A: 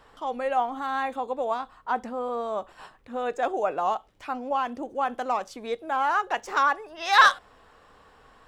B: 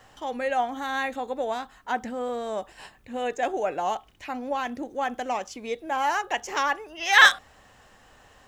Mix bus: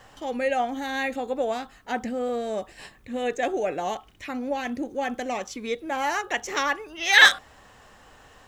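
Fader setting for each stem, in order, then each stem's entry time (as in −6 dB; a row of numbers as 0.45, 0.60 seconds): −4.0, +2.0 decibels; 0.00, 0.00 seconds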